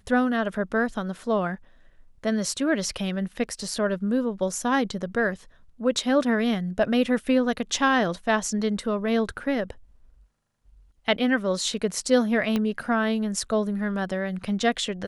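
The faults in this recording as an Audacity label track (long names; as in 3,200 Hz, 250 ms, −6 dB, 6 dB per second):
12.560000	12.560000	click −13 dBFS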